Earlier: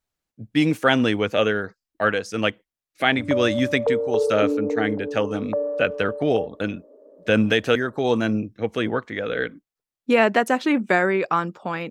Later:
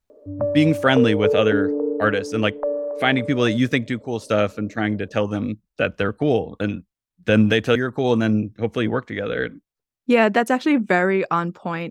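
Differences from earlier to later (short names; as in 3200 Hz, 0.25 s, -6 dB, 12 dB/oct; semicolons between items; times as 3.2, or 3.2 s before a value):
background: entry -2.90 s; master: add low shelf 200 Hz +8 dB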